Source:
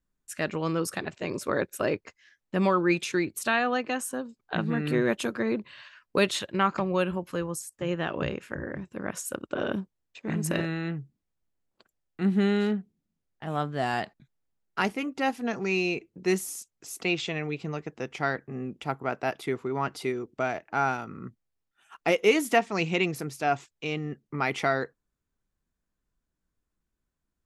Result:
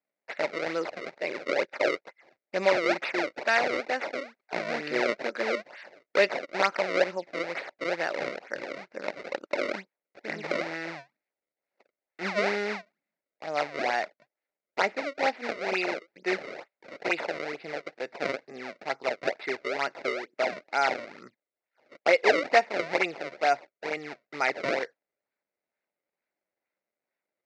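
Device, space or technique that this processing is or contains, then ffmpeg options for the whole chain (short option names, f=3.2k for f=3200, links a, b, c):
circuit-bent sampling toy: -af "acrusher=samples=30:mix=1:aa=0.000001:lfo=1:lforange=48:lforate=2.2,highpass=510,equalizer=f=580:t=q:w=4:g=6,equalizer=f=1.1k:t=q:w=4:g=-7,equalizer=f=2.1k:t=q:w=4:g=8,equalizer=f=3.2k:t=q:w=4:g=-9,lowpass=f=4.8k:w=0.5412,lowpass=f=4.8k:w=1.3066,volume=2dB"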